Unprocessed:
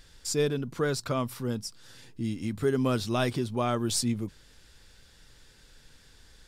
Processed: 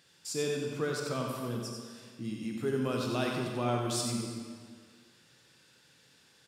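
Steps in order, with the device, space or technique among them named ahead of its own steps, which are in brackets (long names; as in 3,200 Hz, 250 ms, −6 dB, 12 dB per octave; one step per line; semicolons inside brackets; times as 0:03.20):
PA in a hall (high-pass filter 120 Hz 24 dB per octave; parametric band 2,700 Hz +3.5 dB 0.31 octaves; single-tap delay 91 ms −6 dB; convolution reverb RT60 1.8 s, pre-delay 19 ms, DRR 1.5 dB)
level −7 dB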